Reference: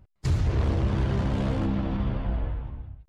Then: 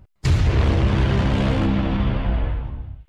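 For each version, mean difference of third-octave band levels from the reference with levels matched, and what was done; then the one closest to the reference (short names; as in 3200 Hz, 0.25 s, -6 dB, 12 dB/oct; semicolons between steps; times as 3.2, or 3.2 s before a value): 1.0 dB: dynamic EQ 2600 Hz, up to +6 dB, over -55 dBFS, Q 0.86; thin delay 69 ms, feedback 75%, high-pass 2400 Hz, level -18 dB; gain +6.5 dB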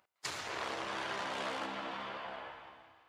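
11.5 dB: HPF 920 Hz 12 dB/oct; Schroeder reverb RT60 3 s, combs from 33 ms, DRR 11.5 dB; gain +2 dB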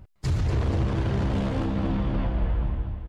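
2.5 dB: limiter -26.5 dBFS, peak gain reduction 9.5 dB; on a send: feedback echo 0.24 s, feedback 50%, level -9.5 dB; on the sum: gain +7.5 dB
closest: first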